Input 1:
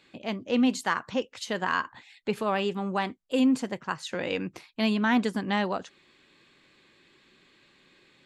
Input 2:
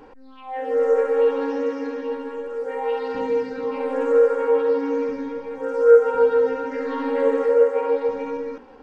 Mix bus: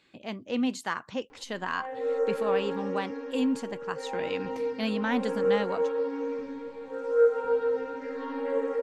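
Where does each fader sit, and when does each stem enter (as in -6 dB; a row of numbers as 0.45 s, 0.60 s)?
-4.5 dB, -9.0 dB; 0.00 s, 1.30 s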